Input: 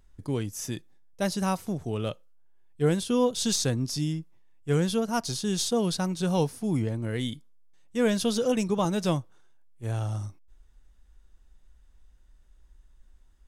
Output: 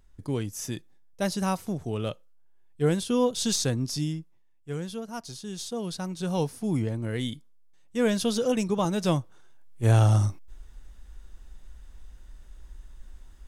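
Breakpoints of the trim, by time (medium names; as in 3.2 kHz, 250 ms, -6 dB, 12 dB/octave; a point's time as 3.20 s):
4.01 s 0 dB
4.74 s -9 dB
5.55 s -9 dB
6.64 s 0 dB
8.98 s 0 dB
9.88 s +11 dB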